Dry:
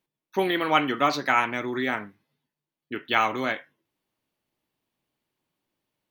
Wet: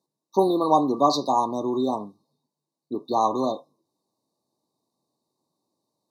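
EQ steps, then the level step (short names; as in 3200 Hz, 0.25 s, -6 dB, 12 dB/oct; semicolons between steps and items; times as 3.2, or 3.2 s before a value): HPF 150 Hz 12 dB/oct; brick-wall FIR band-stop 1200–3600 Hz; LPF 10000 Hz 12 dB/oct; +5.0 dB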